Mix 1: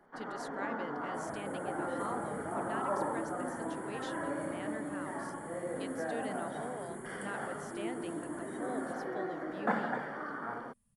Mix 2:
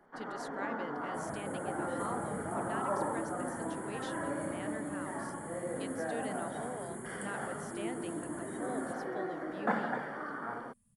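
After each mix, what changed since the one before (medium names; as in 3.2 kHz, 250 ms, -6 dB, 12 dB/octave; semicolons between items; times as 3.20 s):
second sound +4.5 dB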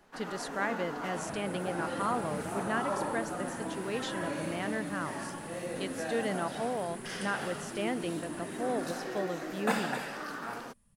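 speech +9.0 dB; first sound: remove Savitzky-Golay filter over 41 samples; master: add peaking EQ 180 Hz +3.5 dB 0.25 oct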